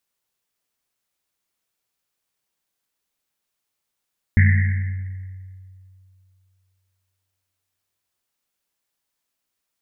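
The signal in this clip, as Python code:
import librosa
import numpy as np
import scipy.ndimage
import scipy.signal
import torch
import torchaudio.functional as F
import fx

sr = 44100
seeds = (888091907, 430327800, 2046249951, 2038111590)

y = fx.risset_drum(sr, seeds[0], length_s=3.85, hz=94.0, decay_s=2.62, noise_hz=1900.0, noise_width_hz=460.0, noise_pct=20)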